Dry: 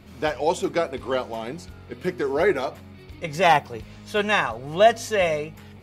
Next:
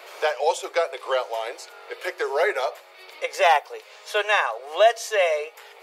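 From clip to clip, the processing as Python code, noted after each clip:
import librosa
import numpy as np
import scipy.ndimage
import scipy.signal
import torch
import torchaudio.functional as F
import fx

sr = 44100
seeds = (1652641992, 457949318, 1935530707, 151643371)

y = scipy.signal.sosfilt(scipy.signal.butter(8, 450.0, 'highpass', fs=sr, output='sos'), x)
y = fx.band_squash(y, sr, depth_pct=40)
y = F.gain(torch.from_numpy(y), 1.5).numpy()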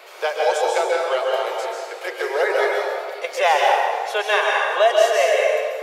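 y = fx.rev_plate(x, sr, seeds[0], rt60_s=1.8, hf_ratio=0.65, predelay_ms=120, drr_db=-2.0)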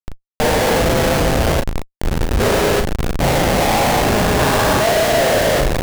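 y = fx.spec_steps(x, sr, hold_ms=400)
y = fx.schmitt(y, sr, flips_db=-21.0)
y = fx.doubler(y, sr, ms=37.0, db=-5.5)
y = F.gain(torch.from_numpy(y), 7.0).numpy()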